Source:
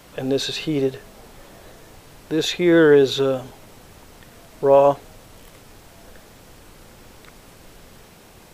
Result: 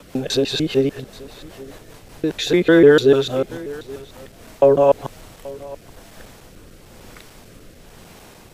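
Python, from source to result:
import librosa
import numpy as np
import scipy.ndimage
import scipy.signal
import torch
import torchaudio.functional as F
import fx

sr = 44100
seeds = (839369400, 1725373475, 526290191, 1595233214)

p1 = fx.local_reverse(x, sr, ms=149.0)
p2 = fx.rotary_switch(p1, sr, hz=5.0, then_hz=1.0, switch_at_s=3.89)
p3 = p2 + fx.echo_single(p2, sr, ms=830, db=-20.5, dry=0)
y = p3 * librosa.db_to_amplitude(4.5)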